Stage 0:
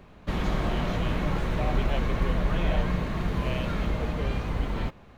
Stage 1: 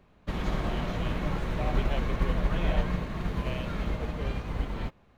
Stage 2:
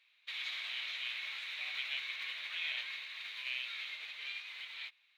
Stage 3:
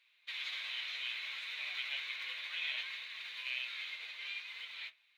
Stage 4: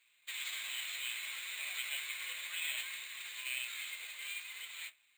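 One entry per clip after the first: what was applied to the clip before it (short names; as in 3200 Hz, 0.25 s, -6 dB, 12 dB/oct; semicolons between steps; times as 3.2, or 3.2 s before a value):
upward expander 1.5:1, over -39 dBFS
resonant high-pass 2300 Hz, resonance Q 4.2; bell 3800 Hz +14.5 dB 0.49 oct; gain -8.5 dB
flange 0.65 Hz, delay 4 ms, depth 5.9 ms, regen +61%; reverb RT60 0.30 s, pre-delay 6 ms, DRR 10.5 dB; gain +3.5 dB
careless resampling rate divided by 4×, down none, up hold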